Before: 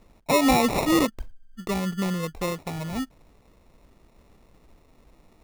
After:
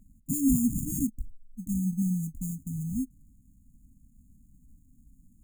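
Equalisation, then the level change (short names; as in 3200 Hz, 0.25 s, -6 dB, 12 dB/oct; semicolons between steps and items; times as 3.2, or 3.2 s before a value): brick-wall FIR band-stop 290–6400 Hz; 0.0 dB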